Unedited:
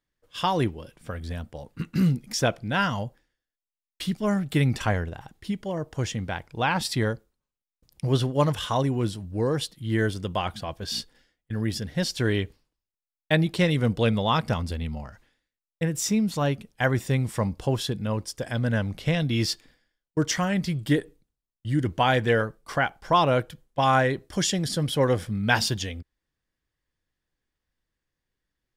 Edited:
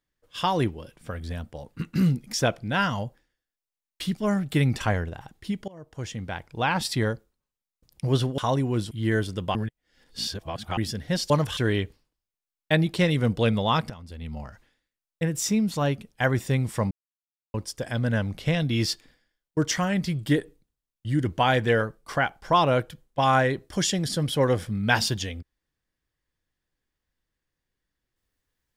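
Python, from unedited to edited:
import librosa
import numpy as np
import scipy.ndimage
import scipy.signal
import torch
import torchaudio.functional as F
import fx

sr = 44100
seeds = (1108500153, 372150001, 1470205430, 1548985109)

y = fx.edit(x, sr, fx.fade_in_from(start_s=5.68, length_s=1.17, curve='qsin', floor_db=-22.0),
    fx.move(start_s=8.38, length_s=0.27, to_s=12.17),
    fx.cut(start_s=9.18, length_s=0.6),
    fx.reverse_span(start_s=10.42, length_s=1.22),
    fx.fade_in_from(start_s=14.5, length_s=0.51, curve='qua', floor_db=-16.5),
    fx.silence(start_s=17.51, length_s=0.63), tone=tone)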